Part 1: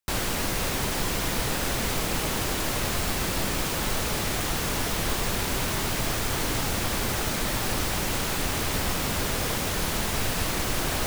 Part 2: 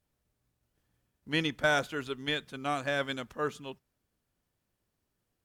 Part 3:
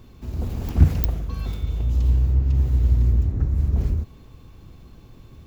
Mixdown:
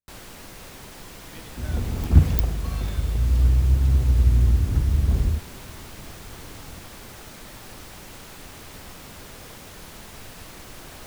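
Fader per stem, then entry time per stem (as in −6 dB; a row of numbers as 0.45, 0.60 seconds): −14.5, −19.5, +0.5 decibels; 0.00, 0.00, 1.35 seconds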